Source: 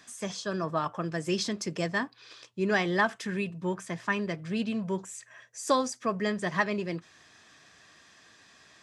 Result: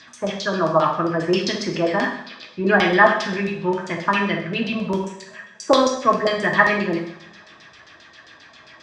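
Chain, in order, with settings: flutter echo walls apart 10.7 m, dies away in 0.44 s; LFO low-pass saw down 7.5 Hz 550–5600 Hz; two-slope reverb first 0.59 s, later 2.2 s, from -25 dB, DRR 1 dB; trim +6 dB

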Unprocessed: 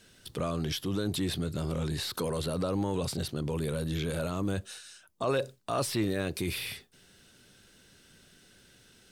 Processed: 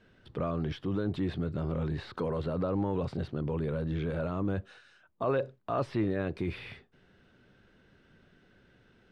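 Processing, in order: low-pass 1.8 kHz 12 dB/octave

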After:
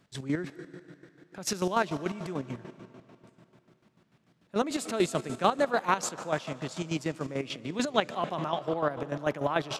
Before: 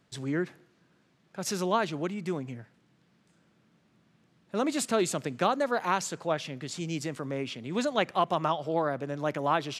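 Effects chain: algorithmic reverb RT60 3.2 s, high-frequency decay 0.9×, pre-delay 115 ms, DRR 12.5 dB; square tremolo 6.8 Hz, depth 65%, duty 40%; trim +2.5 dB

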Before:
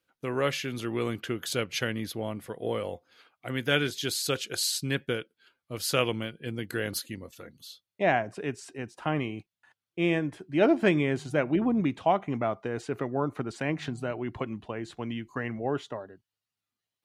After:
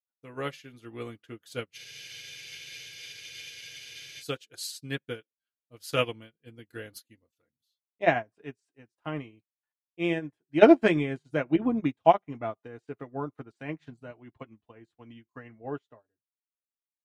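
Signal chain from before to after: comb of notches 190 Hz; spectral freeze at 1.78 s, 2.44 s; upward expansion 2.5:1, over -46 dBFS; trim +9 dB

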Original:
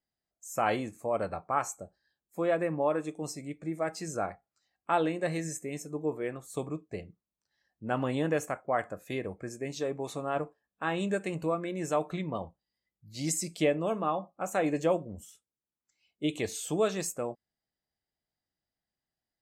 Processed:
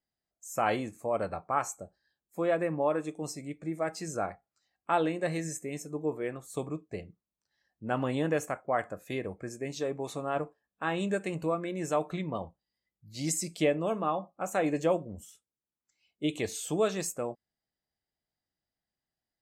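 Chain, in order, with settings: no audible change

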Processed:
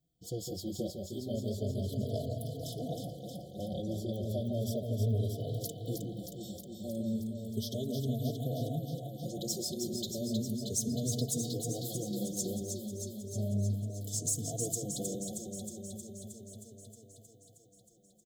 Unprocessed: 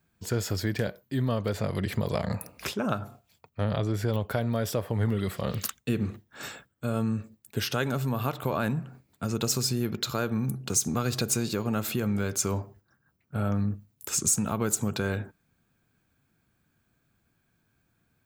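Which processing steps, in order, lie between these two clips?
echo whose repeats swap between lows and highs 157 ms, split 840 Hz, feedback 85%, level -4 dB; FFT band-reject 760–3000 Hz; endless flanger 3.9 ms +0.34 Hz; trim -5.5 dB

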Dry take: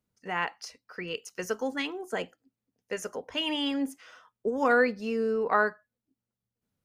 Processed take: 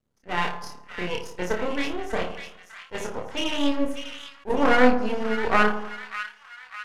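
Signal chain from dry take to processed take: bass shelf 500 Hz +6.5 dB; on a send: flutter echo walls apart 4.8 m, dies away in 0.52 s; on the sum: reverb removal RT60 0.58 s; de-hum 131.6 Hz, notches 30; half-wave rectifier; low-pass 12 kHz 12 dB/octave; tone controls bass -3 dB, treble -4 dB; two-band feedback delay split 1.3 kHz, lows 85 ms, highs 598 ms, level -8.5 dB; attacks held to a fixed rise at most 430 dB/s; trim +5 dB

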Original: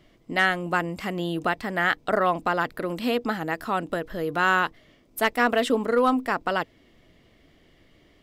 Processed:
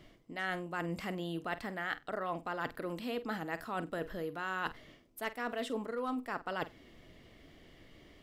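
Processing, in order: reverse; compression 6:1, threshold -35 dBFS, peak gain reduction 17.5 dB; reverse; flutter echo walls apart 8.2 m, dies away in 0.2 s

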